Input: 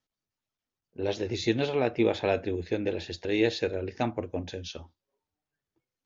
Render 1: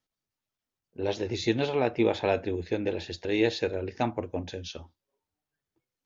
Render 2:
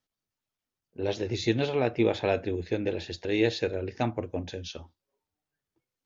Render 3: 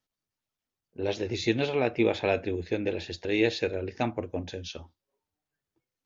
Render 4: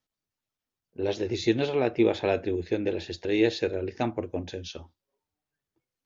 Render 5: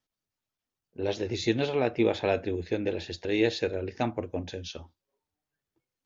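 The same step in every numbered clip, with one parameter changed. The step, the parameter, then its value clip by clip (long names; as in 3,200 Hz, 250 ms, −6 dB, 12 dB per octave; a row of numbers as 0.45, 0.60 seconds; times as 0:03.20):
dynamic equaliser, frequency: 910, 120, 2,400, 360, 7,800 Hertz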